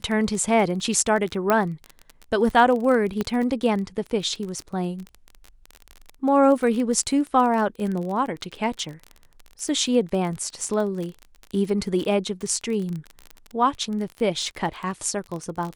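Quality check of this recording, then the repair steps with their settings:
surface crackle 29 per second −28 dBFS
0:01.50: click −7 dBFS
0:03.21: click −12 dBFS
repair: click removal

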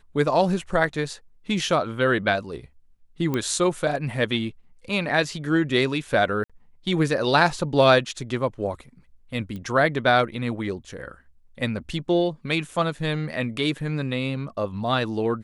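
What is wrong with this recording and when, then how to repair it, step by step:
0:03.34: click −13 dBFS
0:06.44–0:06.50: drop-out 56 ms
0:09.56: click −24 dBFS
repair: click removal
repair the gap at 0:06.44, 56 ms

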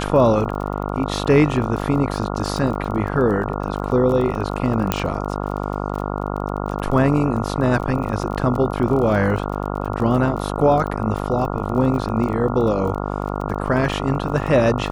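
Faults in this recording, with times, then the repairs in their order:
mains buzz 50 Hz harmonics 28 −25 dBFS
surface crackle 25 per second −27 dBFS
0:04.92: click −3 dBFS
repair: click removal
hum removal 50 Hz, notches 28

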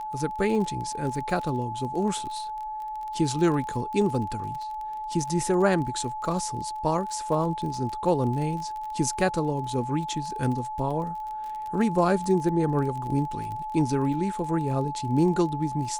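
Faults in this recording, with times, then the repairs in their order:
surface crackle 31 per second −33 dBFS
whistle 860 Hz −31 dBFS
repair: click removal
notch filter 860 Hz, Q 30

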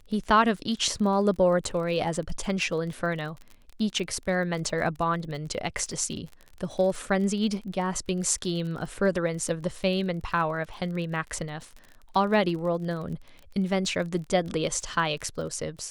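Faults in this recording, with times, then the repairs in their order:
surface crackle 32 per second −35 dBFS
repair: click removal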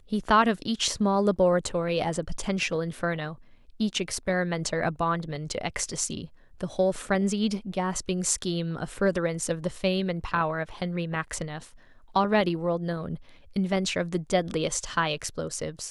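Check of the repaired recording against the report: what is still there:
none of them is left

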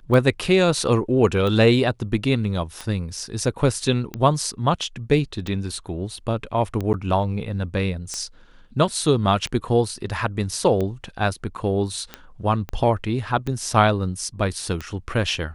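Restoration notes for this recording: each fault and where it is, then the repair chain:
scratch tick 45 rpm −15 dBFS
0:06.93–0:06.94: drop-out 9.6 ms
0:12.69: click −17 dBFS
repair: click removal
repair the gap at 0:06.93, 9.6 ms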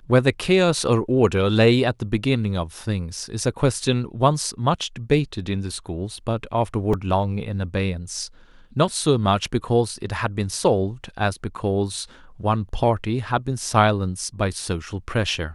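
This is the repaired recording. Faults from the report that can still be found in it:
0:12.69: click

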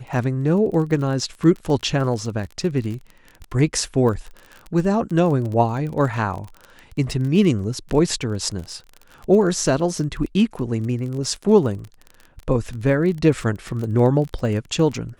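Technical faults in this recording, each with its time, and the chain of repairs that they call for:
surface crackle 27 per second −28 dBFS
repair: click removal

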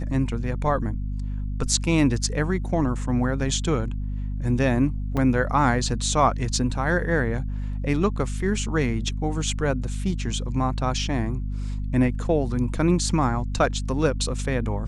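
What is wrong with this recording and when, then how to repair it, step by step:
mains hum 50 Hz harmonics 5 −28 dBFS
0:05.17–0:05.18: drop-out 5.1 ms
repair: hum removal 50 Hz, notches 5
repair the gap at 0:05.17, 5.1 ms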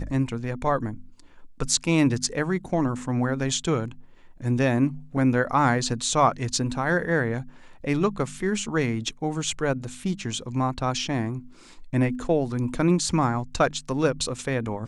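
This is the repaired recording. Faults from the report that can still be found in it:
none of them is left

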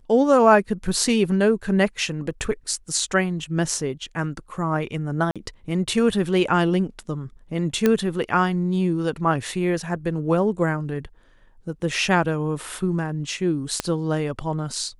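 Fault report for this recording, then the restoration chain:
0:05.31–0:05.36: drop-out 46 ms
0:07.86: click −6 dBFS
0:13.80: click −8 dBFS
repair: click removal
repair the gap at 0:05.31, 46 ms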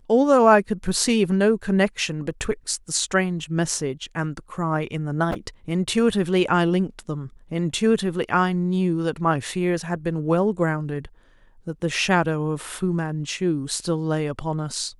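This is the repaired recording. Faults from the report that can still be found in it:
0:13.80: click

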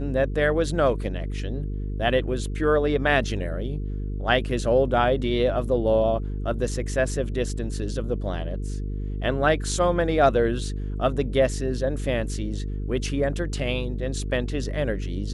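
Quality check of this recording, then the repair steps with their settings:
mains buzz 50 Hz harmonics 9 −29 dBFS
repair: hum removal 50 Hz, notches 9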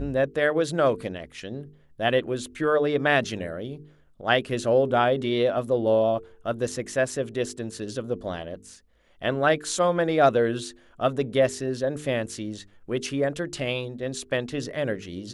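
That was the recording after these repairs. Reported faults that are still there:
none of them is left

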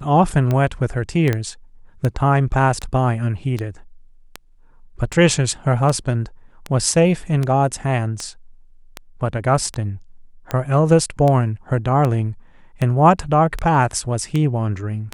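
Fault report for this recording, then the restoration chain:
scratch tick 78 rpm −10 dBFS
0:01.33: click −8 dBFS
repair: click removal

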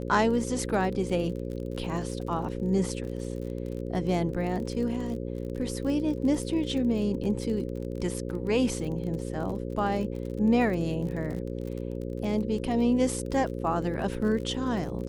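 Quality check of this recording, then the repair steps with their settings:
mains buzz 60 Hz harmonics 9 −34 dBFS
surface crackle 37 per second −35 dBFS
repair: click removal
hum removal 60 Hz, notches 9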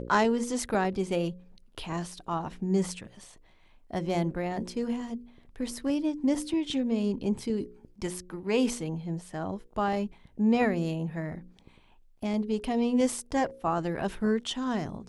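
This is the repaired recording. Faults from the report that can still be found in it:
none of them is left

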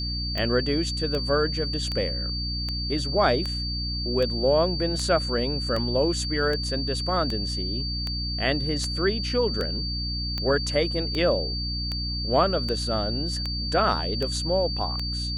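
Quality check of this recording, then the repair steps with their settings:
mains hum 60 Hz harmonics 5 −31 dBFS
scratch tick 78 rpm −16 dBFS
whistle 4,600 Hz −30 dBFS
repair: click removal
hum removal 60 Hz, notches 5
notch filter 4,600 Hz, Q 30

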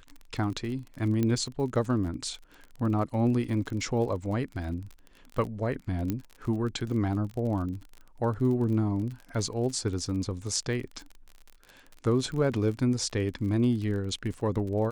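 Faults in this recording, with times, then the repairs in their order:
surface crackle 38 per second −36 dBFS
0:01.23: click −16 dBFS
0:06.10: click −16 dBFS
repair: click removal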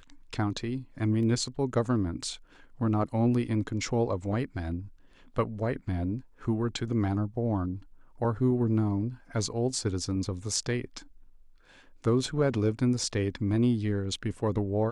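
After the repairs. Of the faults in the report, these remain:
0:01.23: click
0:06.10: click

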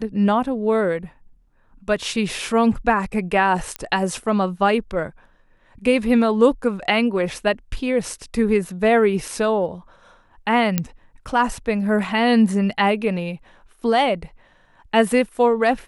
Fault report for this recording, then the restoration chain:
0:03.76: click −11 dBFS
0:10.78: click −5 dBFS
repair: click removal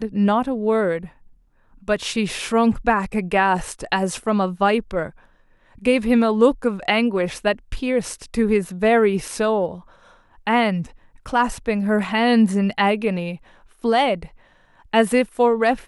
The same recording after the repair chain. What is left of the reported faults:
none of them is left

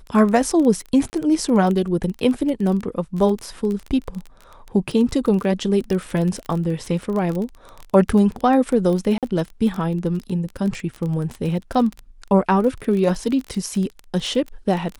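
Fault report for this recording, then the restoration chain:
surface crackle 20 per second −24 dBFS
0:01.10–0:01.13: drop-out 29 ms
0:09.18–0:09.23: drop-out 47 ms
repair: click removal
repair the gap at 0:01.10, 29 ms
repair the gap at 0:09.18, 47 ms

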